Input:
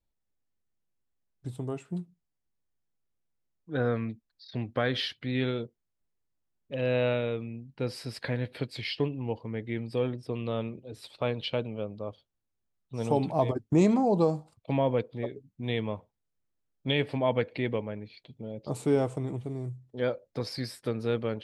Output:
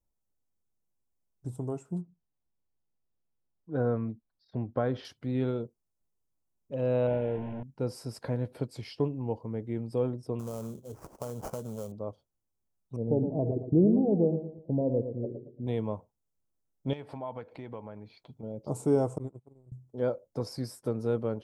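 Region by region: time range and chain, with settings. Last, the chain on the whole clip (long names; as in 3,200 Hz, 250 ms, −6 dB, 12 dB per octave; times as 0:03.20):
0:02.01–0:05.05: low-pass filter 4,200 Hz + high-shelf EQ 3,300 Hz −7.5 dB
0:07.07–0:07.63: linear delta modulator 16 kbit/s, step −30.5 dBFS + Butterworth band-reject 1,200 Hz, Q 2.4
0:10.39–0:11.92: notch filter 310 Hz, Q 5.2 + downward compressor 5 to 1, threshold −32 dBFS + sample-rate reduction 3,700 Hz, jitter 20%
0:12.96–0:15.67: inverse Chebyshev low-pass filter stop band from 1,400 Hz, stop band 50 dB + repeating echo 114 ms, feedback 36%, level −9 dB
0:16.93–0:18.43: flat-topped bell 1,800 Hz +8.5 dB 2.9 octaves + notch filter 2,800 Hz, Q 19 + downward compressor 2.5 to 1, threshold −41 dBFS
0:19.18–0:19.72: notch filter 5,500 Hz, Q 5.3 + noise gate −32 dBFS, range −32 dB
whole clip: flat-topped bell 2,700 Hz −14.5 dB; notch filter 1,200 Hz, Q 13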